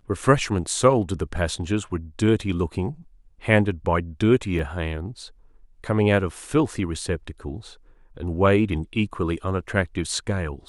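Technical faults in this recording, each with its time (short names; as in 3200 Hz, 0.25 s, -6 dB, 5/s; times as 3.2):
4.59 gap 2.7 ms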